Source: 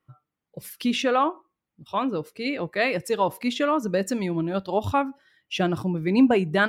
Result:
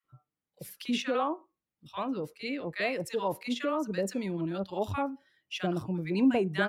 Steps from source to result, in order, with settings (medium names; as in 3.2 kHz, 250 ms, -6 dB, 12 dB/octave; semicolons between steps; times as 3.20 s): bands offset in time highs, lows 40 ms, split 1.1 kHz; trim -6.5 dB